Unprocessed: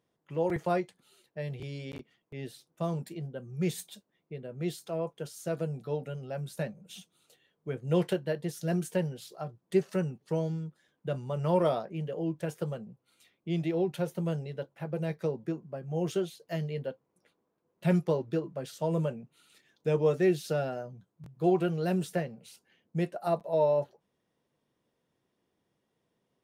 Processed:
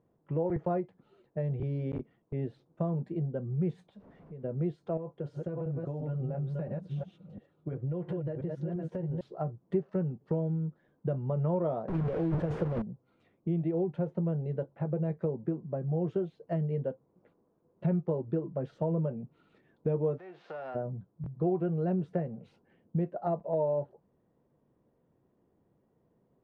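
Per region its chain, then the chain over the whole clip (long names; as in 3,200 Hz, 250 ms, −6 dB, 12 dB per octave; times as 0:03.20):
0:03.89–0:04.44: converter with a step at zero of −55.5 dBFS + notch filter 340 Hz, Q 5.2 + downward compressor 2.5 to 1, threshold −57 dBFS
0:04.97–0:09.21: delay that plays each chunk backwards 344 ms, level −5 dB + downward compressor 10 to 1, threshold −37 dBFS + notch comb filter 220 Hz
0:11.88–0:12.82: linear delta modulator 64 kbit/s, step −32 dBFS + transient designer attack +4 dB, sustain +12 dB
0:20.17–0:20.74: spectral envelope flattened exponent 0.6 + downward compressor 12 to 1, threshold −35 dBFS + band-pass filter 630–4,400 Hz
whole clip: Bessel low-pass filter 760 Hz, order 2; low-shelf EQ 110 Hz +5 dB; downward compressor 3 to 1, threshold −38 dBFS; level +8 dB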